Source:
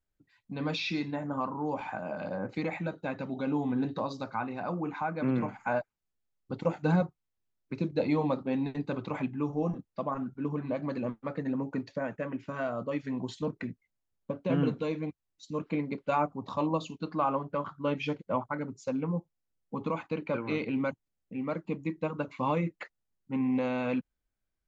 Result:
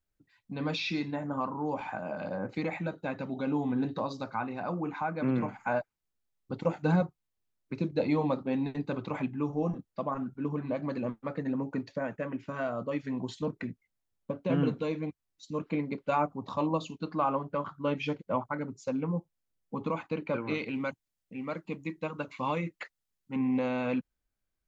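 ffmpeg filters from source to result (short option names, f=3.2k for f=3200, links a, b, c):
-filter_complex "[0:a]asettb=1/sr,asplit=3[a][b][c];[a]atrim=end=20.544[d];[b]atrim=start=20.54:end=23.36,asetpts=PTS-STARTPTS,afade=t=in:d=0.004:c=qsin,afade=t=out:st=2.816:d=0.004:c=qsin,tiltshelf=f=1.4k:g=-4[e];[c]atrim=start=23.356[f];[d][e]acrossfade=d=0.004:c1=hsin:c2=qsin[g];[g][f]acrossfade=d=0.004:c1=qsin:c2=hsin"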